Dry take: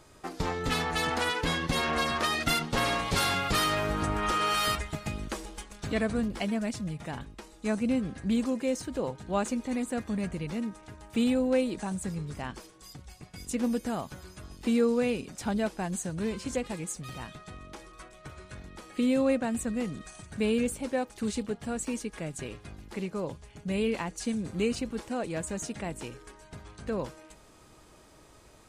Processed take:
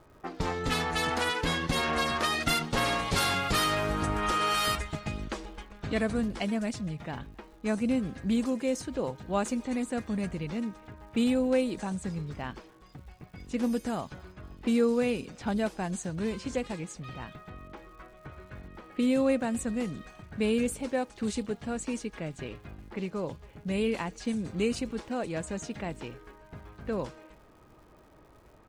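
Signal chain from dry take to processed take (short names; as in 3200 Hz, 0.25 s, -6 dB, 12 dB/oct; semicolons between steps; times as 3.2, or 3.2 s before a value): low-pass opened by the level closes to 1600 Hz, open at -26 dBFS; speakerphone echo 0.26 s, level -28 dB; crackle 250/s -54 dBFS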